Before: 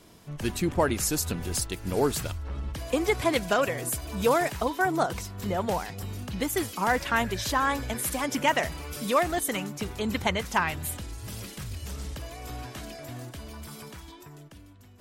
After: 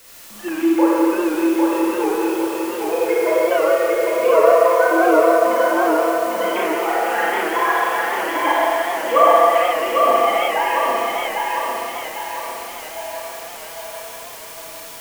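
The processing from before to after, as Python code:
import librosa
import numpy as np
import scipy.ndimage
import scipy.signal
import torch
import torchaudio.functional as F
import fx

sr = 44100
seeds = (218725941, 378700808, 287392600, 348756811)

y = fx.sine_speech(x, sr)
y = fx.hum_notches(y, sr, base_hz=60, count=8)
y = fx.env_lowpass_down(y, sr, base_hz=1000.0, full_db=-20.0)
y = fx.highpass(y, sr, hz=380.0, slope=6)
y = y + 0.69 * np.pad(y, (int(6.0 * sr / 1000.0), 0))[:len(y)]
y = fx.quant_dither(y, sr, seeds[0], bits=8, dither='triangular')
y = fx.echo_feedback(y, sr, ms=802, feedback_pct=48, wet_db=-3.0)
y = fx.rev_schroeder(y, sr, rt60_s=2.7, comb_ms=27, drr_db=-8.5)
y = fx.record_warp(y, sr, rpm=78.0, depth_cents=100.0)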